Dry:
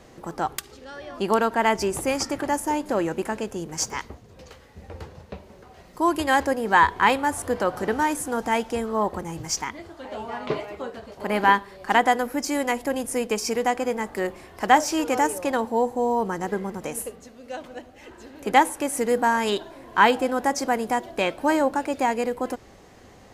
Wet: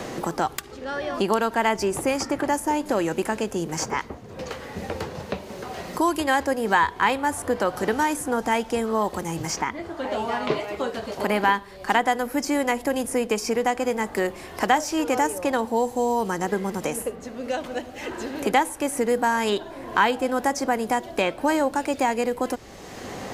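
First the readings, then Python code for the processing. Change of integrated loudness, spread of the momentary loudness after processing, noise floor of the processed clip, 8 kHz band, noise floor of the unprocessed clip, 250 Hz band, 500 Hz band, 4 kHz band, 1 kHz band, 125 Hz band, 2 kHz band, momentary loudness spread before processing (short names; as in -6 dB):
-1.0 dB, 11 LU, -41 dBFS, -0.5 dB, -50 dBFS, +1.0 dB, +1.0 dB, 0.0 dB, -1.0 dB, +2.0 dB, -0.5 dB, 17 LU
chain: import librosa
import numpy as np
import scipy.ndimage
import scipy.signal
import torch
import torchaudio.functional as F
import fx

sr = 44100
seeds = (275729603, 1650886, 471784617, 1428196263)

y = fx.band_squash(x, sr, depth_pct=70)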